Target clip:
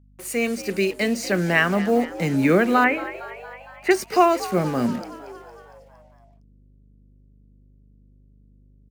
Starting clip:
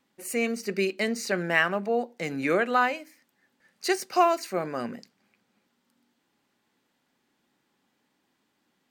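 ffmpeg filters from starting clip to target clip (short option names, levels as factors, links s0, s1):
-filter_complex "[0:a]acrossover=split=270|900|5800[s0][s1][s2][s3];[s0]dynaudnorm=f=270:g=11:m=3.98[s4];[s4][s1][s2][s3]amix=inputs=4:normalize=0,acrusher=bits=6:mix=0:aa=0.5,asettb=1/sr,asplit=3[s5][s6][s7];[s5]atrim=end=2.844[s8];[s6]atrim=start=2.84:end=3.91,asetpts=PTS-STARTPTS,afade=t=in:d=0.004:c=qsin,afade=t=out:st=1.066:d=0.004:c=qsin,highshelf=f=3200:t=q:w=3:g=-13.5[s9];[s7]atrim=start=3.906[s10];[s8][s9]acrossfade=d=0.004:c1=hsin:c2=qsin[s11];[s11][s10]acrossfade=d=0.004:c1=qsin:c2=hsin,aeval=exprs='val(0)+0.00158*(sin(2*PI*50*n/s)+sin(2*PI*2*50*n/s)/2+sin(2*PI*3*50*n/s)/3+sin(2*PI*4*50*n/s)/4+sin(2*PI*5*50*n/s)/5)':c=same,asplit=7[s12][s13][s14][s15][s16][s17][s18];[s13]adelay=230,afreqshift=76,volume=0.158[s19];[s14]adelay=460,afreqshift=152,volume=0.1[s20];[s15]adelay=690,afreqshift=228,volume=0.0631[s21];[s16]adelay=920,afreqshift=304,volume=0.0398[s22];[s17]adelay=1150,afreqshift=380,volume=0.0248[s23];[s18]adelay=1380,afreqshift=456,volume=0.0157[s24];[s12][s19][s20][s21][s22][s23][s24]amix=inputs=7:normalize=0,volume=1.5"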